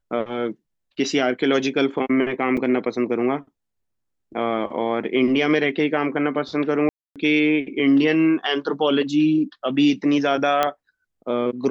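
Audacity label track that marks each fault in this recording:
2.570000	2.570000	drop-out 4.8 ms
6.890000	7.160000	drop-out 267 ms
10.630000	10.630000	click −6 dBFS

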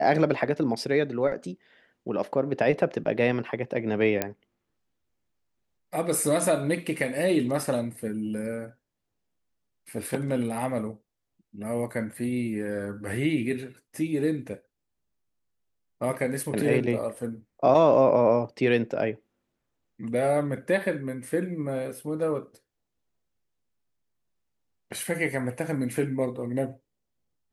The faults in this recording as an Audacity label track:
4.220000	4.220000	click −10 dBFS

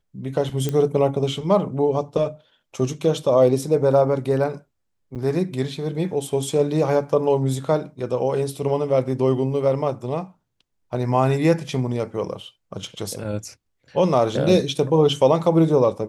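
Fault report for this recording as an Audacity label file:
0.690000	0.690000	click −11 dBFS
5.150000	5.160000	drop-out 8.3 ms

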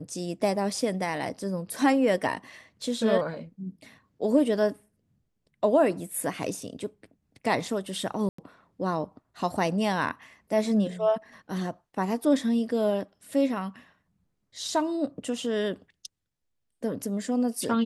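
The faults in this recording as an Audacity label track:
8.290000	8.380000	drop-out 94 ms

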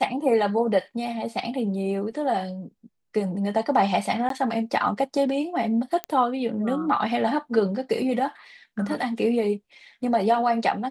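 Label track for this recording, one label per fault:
4.290000	4.300000	drop-out 13 ms
6.040000	6.040000	click −13 dBFS

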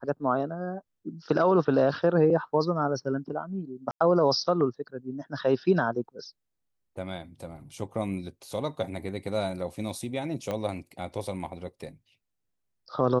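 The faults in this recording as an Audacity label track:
3.910000	4.000000	drop-out 95 ms
10.510000	10.510000	click −18 dBFS

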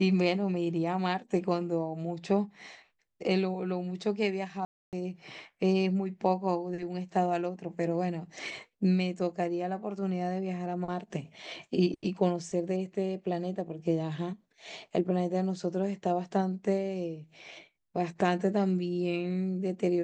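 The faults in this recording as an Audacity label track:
4.650000	4.930000	drop-out 278 ms

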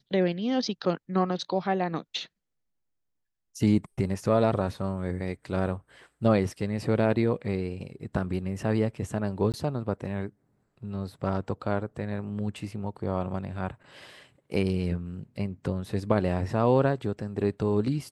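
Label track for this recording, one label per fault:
9.520000	9.540000	drop-out 18 ms

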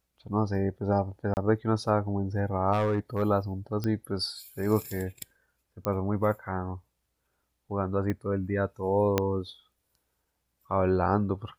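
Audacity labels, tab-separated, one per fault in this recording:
1.340000	1.370000	drop-out 29 ms
2.720000	3.230000	clipping −21.5 dBFS
3.840000	3.840000	click −19 dBFS
5.850000	5.850000	click −15 dBFS
8.100000	8.100000	click −19 dBFS
9.180000	9.180000	click −9 dBFS

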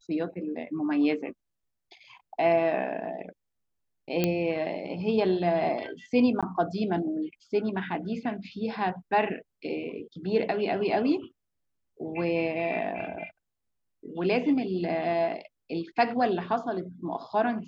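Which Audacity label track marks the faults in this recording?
4.240000	4.240000	click −11 dBFS
6.410000	6.430000	drop-out 16 ms

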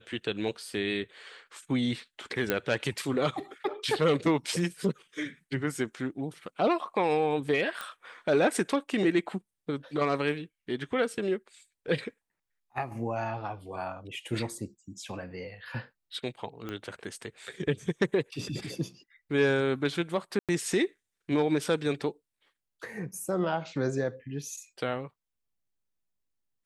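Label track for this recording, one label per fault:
2.500000	2.500000	click −11 dBFS
7.810000	7.810000	click
16.690000	16.690000	click −23 dBFS
20.390000	20.490000	drop-out 97 ms

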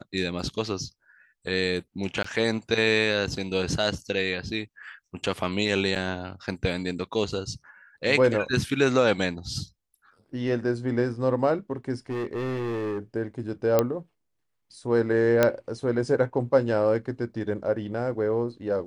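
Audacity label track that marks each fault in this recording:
2.230000	2.240000	drop-out 14 ms
5.950000	5.960000	drop-out 7.4 ms
12.090000	12.990000	clipping −26.5 dBFS
13.790000	13.790000	click −7 dBFS
15.430000	15.430000	click −6 dBFS

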